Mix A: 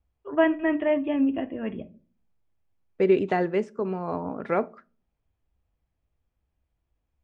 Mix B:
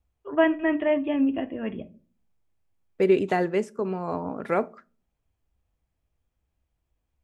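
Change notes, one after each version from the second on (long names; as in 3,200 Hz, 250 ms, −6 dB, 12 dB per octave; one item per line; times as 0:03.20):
master: remove high-frequency loss of the air 120 metres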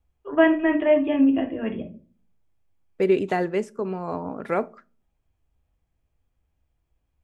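first voice: send +9.5 dB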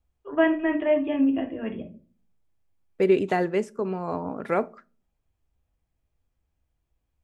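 first voice −3.5 dB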